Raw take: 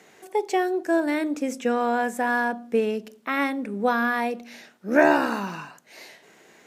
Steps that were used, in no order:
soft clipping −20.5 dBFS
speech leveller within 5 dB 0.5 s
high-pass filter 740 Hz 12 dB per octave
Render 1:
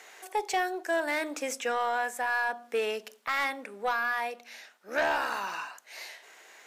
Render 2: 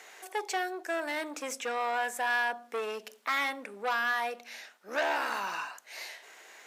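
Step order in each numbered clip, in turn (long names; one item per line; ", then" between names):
high-pass filter, then speech leveller, then soft clipping
speech leveller, then soft clipping, then high-pass filter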